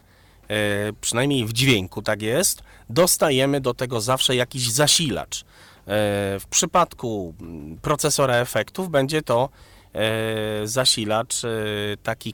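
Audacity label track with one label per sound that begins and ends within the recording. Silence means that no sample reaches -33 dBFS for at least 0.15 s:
0.500000	2.590000	sound
2.900000	5.410000	sound
5.880000	9.470000	sound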